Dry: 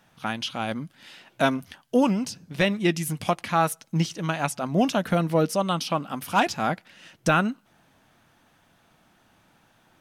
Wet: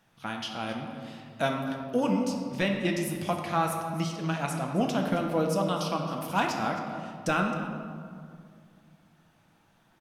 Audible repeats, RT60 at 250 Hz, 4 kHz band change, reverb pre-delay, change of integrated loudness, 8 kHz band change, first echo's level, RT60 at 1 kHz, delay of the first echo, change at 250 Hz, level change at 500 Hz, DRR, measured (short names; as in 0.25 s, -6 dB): 1, 2.8 s, -5.0 dB, 6 ms, -4.5 dB, -5.5 dB, -15.5 dB, 2.0 s, 0.266 s, -3.5 dB, -3.5 dB, 2.0 dB